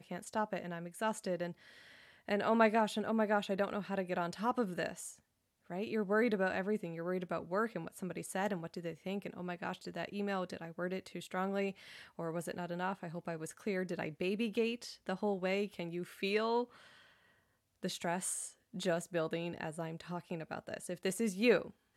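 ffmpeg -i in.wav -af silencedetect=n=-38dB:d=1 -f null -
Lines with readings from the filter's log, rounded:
silence_start: 16.64
silence_end: 17.84 | silence_duration: 1.20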